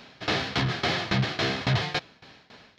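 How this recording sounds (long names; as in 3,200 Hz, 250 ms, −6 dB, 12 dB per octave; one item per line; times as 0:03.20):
tremolo saw down 3.6 Hz, depth 90%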